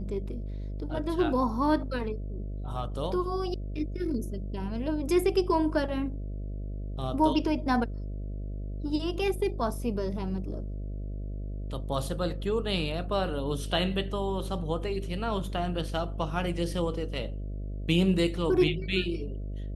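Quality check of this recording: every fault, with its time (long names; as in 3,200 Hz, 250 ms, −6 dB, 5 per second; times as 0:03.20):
mains buzz 50 Hz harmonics 13 −35 dBFS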